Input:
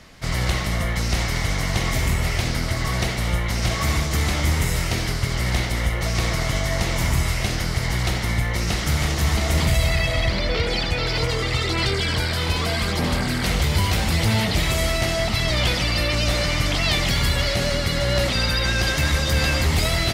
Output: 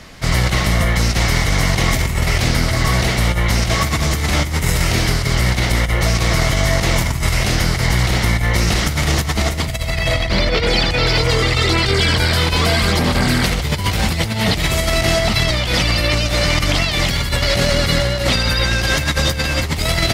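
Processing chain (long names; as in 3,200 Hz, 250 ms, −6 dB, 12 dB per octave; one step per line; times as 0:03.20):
compressor whose output falls as the input rises −22 dBFS, ratio −0.5
level +6.5 dB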